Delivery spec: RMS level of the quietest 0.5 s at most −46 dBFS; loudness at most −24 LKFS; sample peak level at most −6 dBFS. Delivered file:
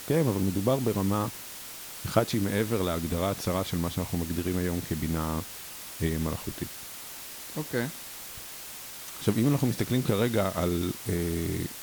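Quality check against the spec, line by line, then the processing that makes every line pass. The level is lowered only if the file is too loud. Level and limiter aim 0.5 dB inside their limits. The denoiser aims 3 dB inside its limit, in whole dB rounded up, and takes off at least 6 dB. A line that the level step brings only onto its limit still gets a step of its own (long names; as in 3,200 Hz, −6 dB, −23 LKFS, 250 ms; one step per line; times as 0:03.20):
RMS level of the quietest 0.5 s −42 dBFS: out of spec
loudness −30.0 LKFS: in spec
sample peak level −7.5 dBFS: in spec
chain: broadband denoise 7 dB, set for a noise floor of −42 dBFS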